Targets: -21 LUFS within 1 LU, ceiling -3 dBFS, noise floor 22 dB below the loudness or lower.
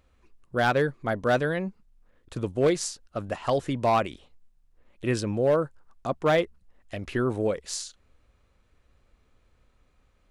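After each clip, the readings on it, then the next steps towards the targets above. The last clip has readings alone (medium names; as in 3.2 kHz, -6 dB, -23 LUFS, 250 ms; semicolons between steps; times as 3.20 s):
clipped samples 0.4%; clipping level -15.5 dBFS; loudness -27.5 LUFS; peak level -15.5 dBFS; loudness target -21.0 LUFS
-> clip repair -15.5 dBFS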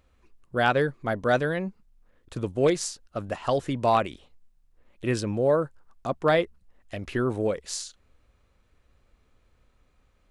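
clipped samples 0.0%; loudness -27.0 LUFS; peak level -7.5 dBFS; loudness target -21.0 LUFS
-> trim +6 dB; peak limiter -3 dBFS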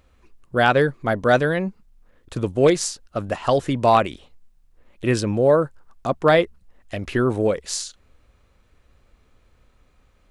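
loudness -21.0 LUFS; peak level -3.0 dBFS; noise floor -60 dBFS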